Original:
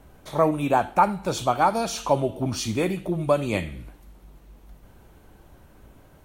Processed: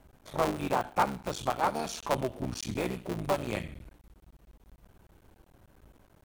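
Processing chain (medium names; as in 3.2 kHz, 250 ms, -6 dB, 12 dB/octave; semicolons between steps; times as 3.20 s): cycle switcher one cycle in 3, muted; trim -6.5 dB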